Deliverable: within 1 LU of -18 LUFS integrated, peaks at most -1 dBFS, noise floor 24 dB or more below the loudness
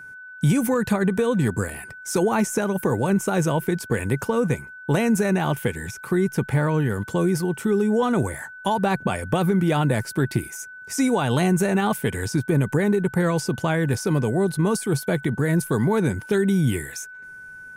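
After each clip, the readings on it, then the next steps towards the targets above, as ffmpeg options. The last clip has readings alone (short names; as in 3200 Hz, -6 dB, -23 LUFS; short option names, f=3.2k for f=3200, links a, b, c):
steady tone 1500 Hz; tone level -38 dBFS; loudness -22.5 LUFS; peak -9.0 dBFS; loudness target -18.0 LUFS
-> -af "bandreject=f=1.5k:w=30"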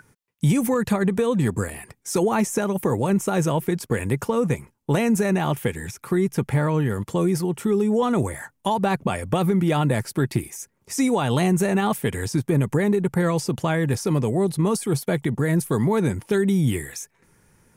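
steady tone none; loudness -22.5 LUFS; peak -9.0 dBFS; loudness target -18.0 LUFS
-> -af "volume=4.5dB"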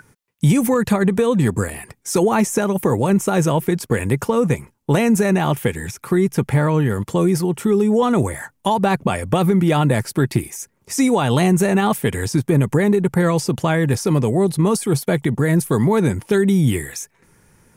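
loudness -18.0 LUFS; peak -4.5 dBFS; noise floor -63 dBFS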